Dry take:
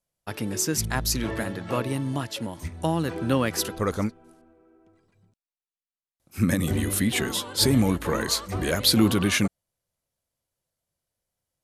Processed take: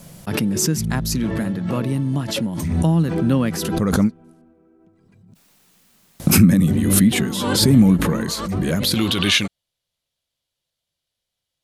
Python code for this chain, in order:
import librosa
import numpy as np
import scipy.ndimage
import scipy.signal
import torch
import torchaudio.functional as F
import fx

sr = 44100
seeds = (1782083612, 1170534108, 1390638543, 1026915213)

y = fx.peak_eq(x, sr, hz=fx.steps((0.0, 180.0), (8.94, 3500.0)), db=15.0, octaves=1.2)
y = fx.pre_swell(y, sr, db_per_s=35.0)
y = F.gain(torch.from_numpy(y), -2.0).numpy()